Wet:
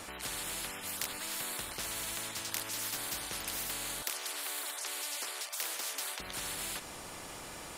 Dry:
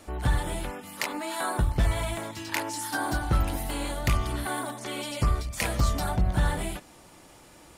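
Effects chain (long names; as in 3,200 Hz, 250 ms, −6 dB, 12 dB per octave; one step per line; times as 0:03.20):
0:04.02–0:06.20: high-pass filter 720 Hz 24 dB per octave
every bin compressed towards the loudest bin 10 to 1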